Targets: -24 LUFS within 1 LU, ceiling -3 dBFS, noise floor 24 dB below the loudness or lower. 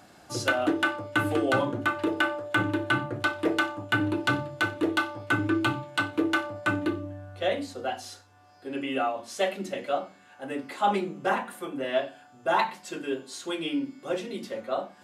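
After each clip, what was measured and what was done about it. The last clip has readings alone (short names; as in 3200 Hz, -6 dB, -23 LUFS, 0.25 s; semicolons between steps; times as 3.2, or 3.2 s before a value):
loudness -28.5 LUFS; peak -12.5 dBFS; loudness target -24.0 LUFS
-> gain +4.5 dB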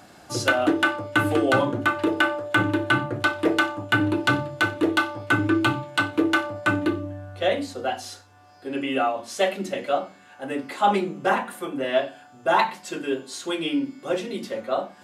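loudness -24.0 LUFS; peak -8.0 dBFS; noise floor -50 dBFS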